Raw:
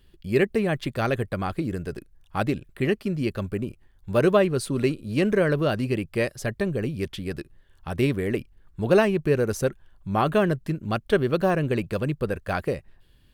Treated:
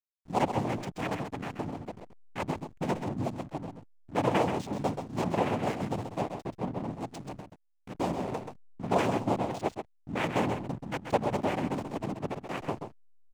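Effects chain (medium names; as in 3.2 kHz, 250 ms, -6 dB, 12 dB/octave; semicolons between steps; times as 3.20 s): time-frequency box 6.20–6.90 s, 950–6300 Hz -11 dB; noise-vocoded speech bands 4; hysteresis with a dead band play -29.5 dBFS; delay 131 ms -7.5 dB; trim -7.5 dB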